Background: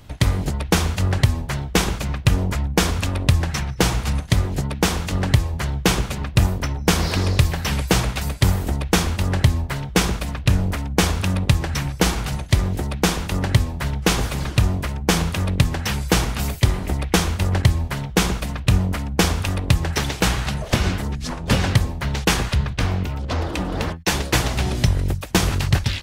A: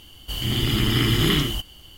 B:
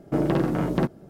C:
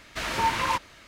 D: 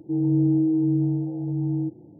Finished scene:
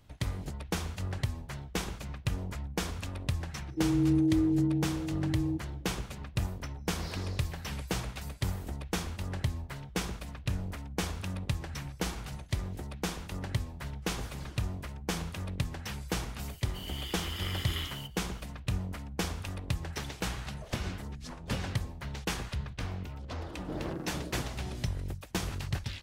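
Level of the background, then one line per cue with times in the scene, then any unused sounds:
background −15.5 dB
0:03.68: mix in D −4.5 dB + low-shelf EQ 82 Hz −10.5 dB
0:16.46: mix in A −14 dB + Bessel high-pass filter 690 Hz
0:23.56: mix in B −15.5 dB
not used: C

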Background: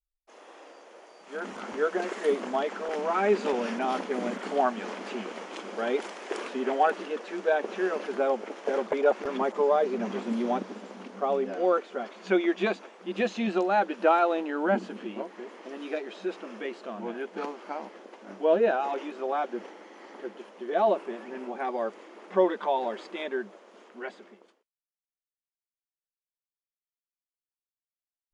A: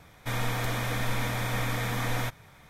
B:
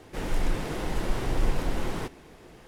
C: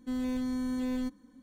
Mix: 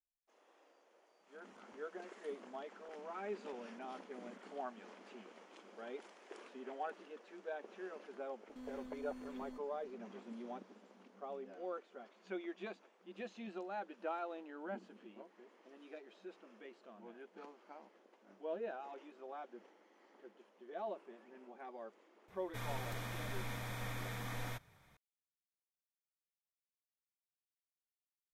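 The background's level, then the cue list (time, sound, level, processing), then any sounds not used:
background −19.5 dB
0:08.49: mix in C −10 dB + brickwall limiter −35 dBFS
0:22.28: mix in A −13.5 dB
not used: B

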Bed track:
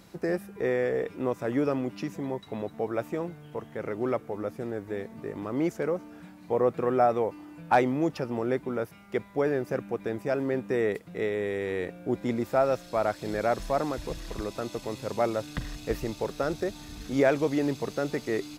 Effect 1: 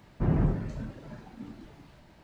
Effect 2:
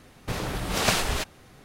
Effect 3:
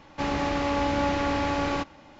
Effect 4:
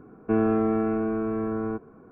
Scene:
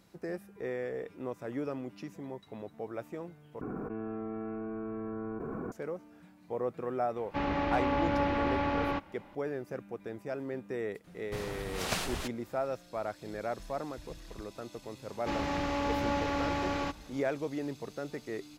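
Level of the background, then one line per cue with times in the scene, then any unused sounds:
bed track −9.5 dB
0:03.61: overwrite with 4 −18 dB + envelope flattener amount 100%
0:07.16: mix in 3 −4 dB + low-pass filter 2,900 Hz
0:11.04: mix in 2 −10 dB
0:15.08: mix in 3 −6 dB
not used: 1

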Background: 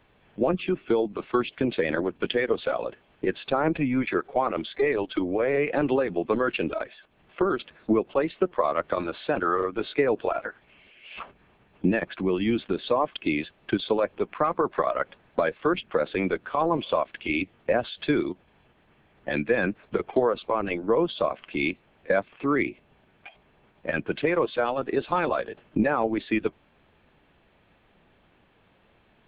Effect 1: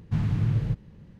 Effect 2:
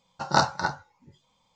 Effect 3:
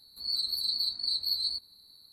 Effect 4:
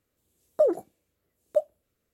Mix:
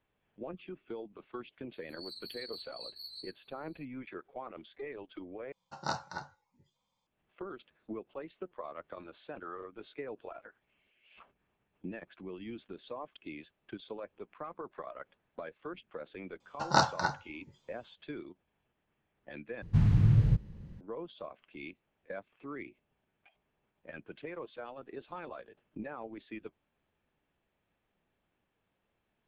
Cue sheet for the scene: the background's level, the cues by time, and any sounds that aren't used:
background −19 dB
0:01.73: mix in 3 −16.5 dB
0:05.52: overwrite with 2 −14 dB
0:16.40: mix in 2 −4 dB
0:19.62: overwrite with 1 −3 dB + low-shelf EQ 100 Hz +9 dB
not used: 4

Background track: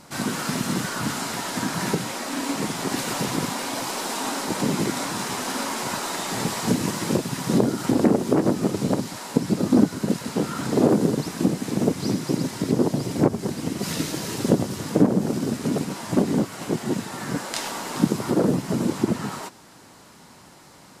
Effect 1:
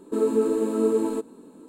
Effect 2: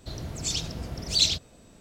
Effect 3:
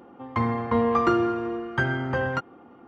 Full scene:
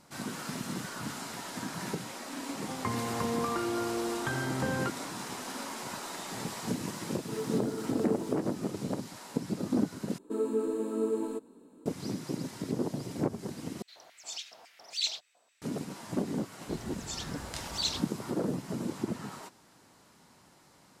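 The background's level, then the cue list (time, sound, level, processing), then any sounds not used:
background track −11.5 dB
0:02.49: mix in 3 −0.5 dB + downward compressor, threshold −29 dBFS
0:07.16: mix in 1 −14.5 dB + mu-law and A-law mismatch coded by mu
0:10.18: overwrite with 1 −8.5 dB
0:13.82: overwrite with 2 −11.5 dB + auto-filter high-pass square 3.6 Hz 780–2,100 Hz
0:16.63: mix in 2 −10 dB

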